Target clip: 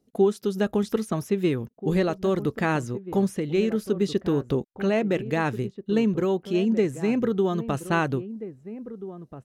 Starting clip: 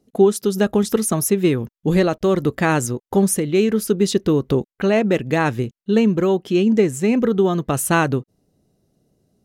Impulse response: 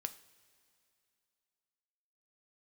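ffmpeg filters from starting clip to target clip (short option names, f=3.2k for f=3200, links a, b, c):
-filter_complex "[0:a]asplit=2[a][b];[b]adelay=1633,volume=-13dB,highshelf=f=4k:g=-36.7[c];[a][c]amix=inputs=2:normalize=0,acrossover=split=4400[d][e];[e]acompressor=threshold=-39dB:ratio=4:attack=1:release=60[f];[d][f]amix=inputs=2:normalize=0,volume=-6.5dB"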